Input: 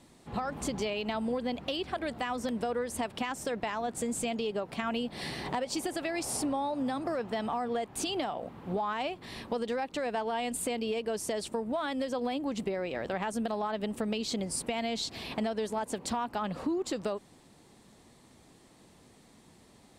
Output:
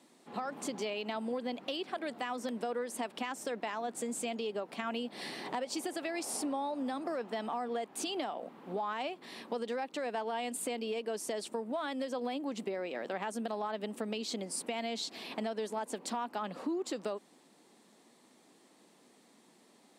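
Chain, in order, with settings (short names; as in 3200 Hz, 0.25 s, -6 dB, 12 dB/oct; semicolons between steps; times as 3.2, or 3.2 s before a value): HPF 210 Hz 24 dB/oct; gain -3.5 dB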